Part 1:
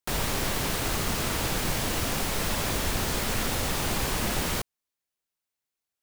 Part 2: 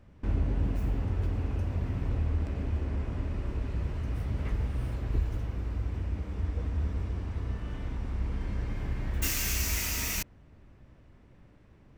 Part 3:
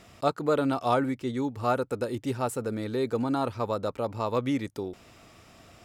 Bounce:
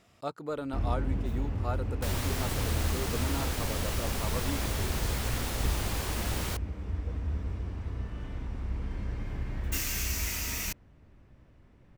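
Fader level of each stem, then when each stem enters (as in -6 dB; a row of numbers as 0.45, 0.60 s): -6.5, -2.0, -10.0 dB; 1.95, 0.50, 0.00 s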